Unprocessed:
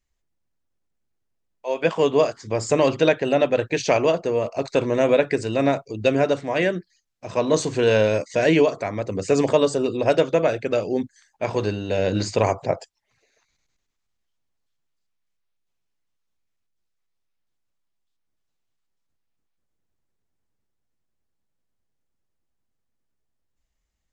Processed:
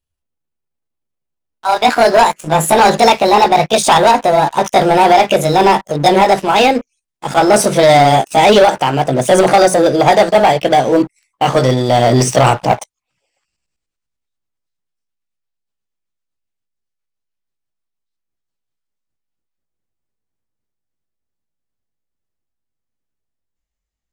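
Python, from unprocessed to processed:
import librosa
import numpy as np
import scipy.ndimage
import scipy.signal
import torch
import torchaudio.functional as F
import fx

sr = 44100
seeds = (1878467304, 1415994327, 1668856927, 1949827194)

y = fx.pitch_glide(x, sr, semitones=7.5, runs='ending unshifted')
y = fx.leveller(y, sr, passes=3)
y = y * librosa.db_to_amplitude(3.5)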